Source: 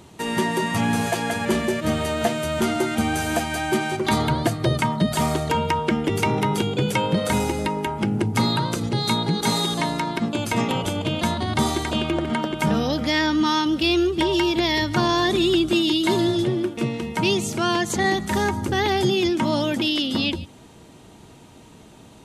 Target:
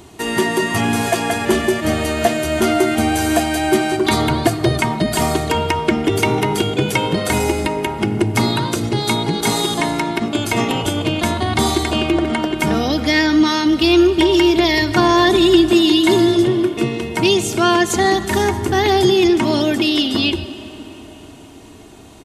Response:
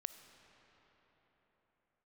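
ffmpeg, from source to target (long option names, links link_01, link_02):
-filter_complex "[0:a]aecho=1:1:2.8:0.46,asplit=2[link_01][link_02];[1:a]atrim=start_sample=2205,highshelf=frequency=12000:gain=6[link_03];[link_02][link_03]afir=irnorm=-1:irlink=0,volume=10dB[link_04];[link_01][link_04]amix=inputs=2:normalize=0,volume=-5dB"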